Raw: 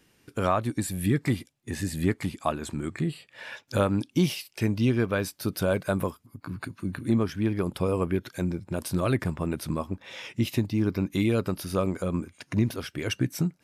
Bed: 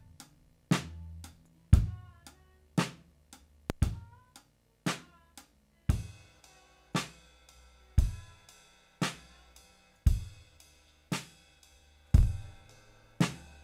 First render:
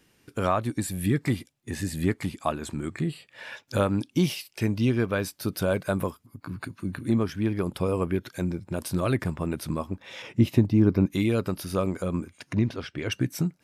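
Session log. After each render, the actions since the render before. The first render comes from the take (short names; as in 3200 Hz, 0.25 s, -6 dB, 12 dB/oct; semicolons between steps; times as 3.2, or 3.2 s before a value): 10.22–11.06 tilt shelf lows +6 dB, about 1500 Hz; 12.53–13.12 LPF 4700 Hz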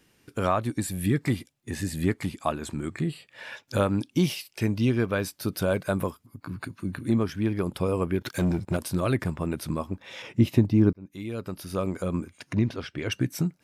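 8.21–8.77 sample leveller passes 2; 10.93–12.06 fade in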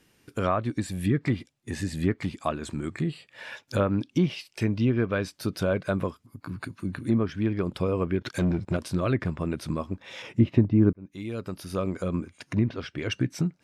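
treble ducked by the level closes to 2000 Hz, closed at -18.5 dBFS; dynamic EQ 850 Hz, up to -5 dB, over -48 dBFS, Q 4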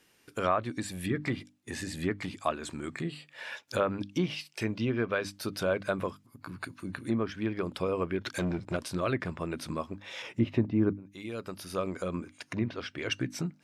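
low shelf 300 Hz -9.5 dB; notches 50/100/150/200/250/300 Hz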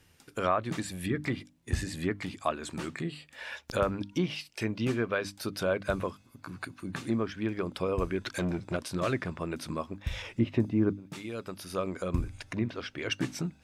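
add bed -9.5 dB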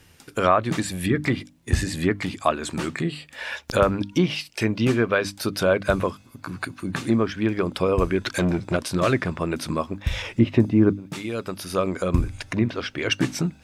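gain +9 dB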